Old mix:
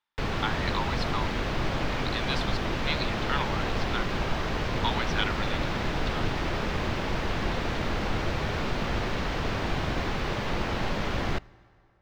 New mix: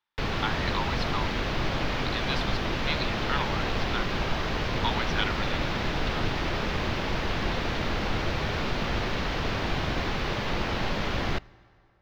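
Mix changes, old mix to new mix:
background: add parametric band 4,200 Hz +3.5 dB 2 octaves
master: add parametric band 8,300 Hz −7 dB 0.53 octaves

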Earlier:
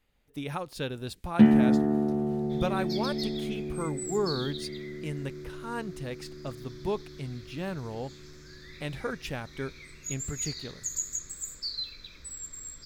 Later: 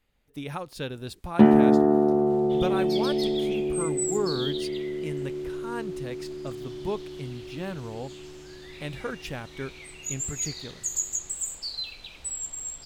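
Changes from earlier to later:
first sound: add flat-topped bell 650 Hz +10 dB 2.4 octaves
second sound: remove phaser with its sweep stopped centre 2,900 Hz, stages 6

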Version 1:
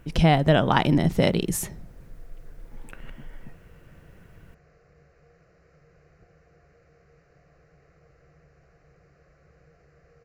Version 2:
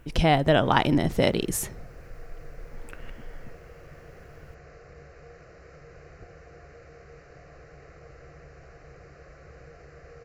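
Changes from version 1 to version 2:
background +11.0 dB
master: add parametric band 170 Hz −7 dB 0.52 octaves

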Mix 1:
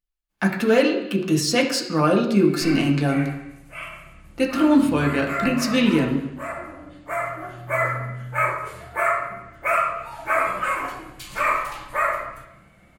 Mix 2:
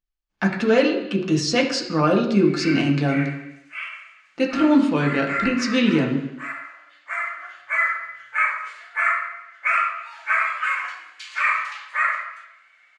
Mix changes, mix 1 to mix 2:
background: add high-pass with resonance 1,700 Hz, resonance Q 1.8
master: add low-pass filter 6,600 Hz 24 dB per octave

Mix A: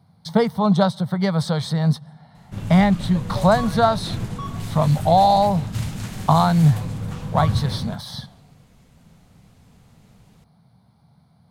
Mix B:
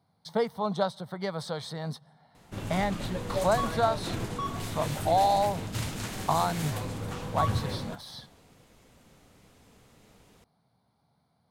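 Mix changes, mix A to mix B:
speech −9.0 dB
master: add low shelf with overshoot 240 Hz −7 dB, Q 1.5

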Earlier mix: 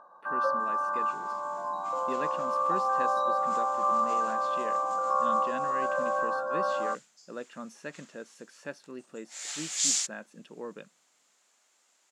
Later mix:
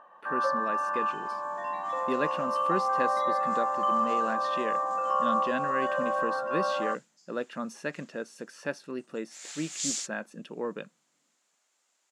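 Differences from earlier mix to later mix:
speech +6.5 dB
first sound: remove linear-phase brick-wall band-stop 1,700–3,600 Hz
second sound −5.5 dB

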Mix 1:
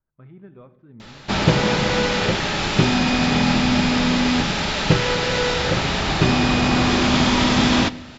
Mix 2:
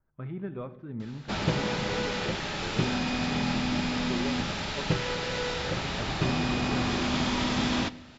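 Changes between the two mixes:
speech +7.5 dB
background −10.5 dB

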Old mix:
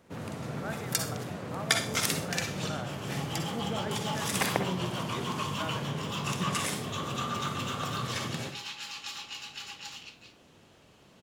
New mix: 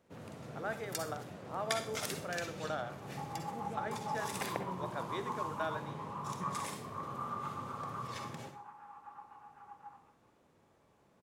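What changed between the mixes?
first sound −11.0 dB
second sound: add inverse Chebyshev low-pass filter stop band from 3,600 Hz, stop band 60 dB
master: add parametric band 540 Hz +3 dB 1.2 octaves

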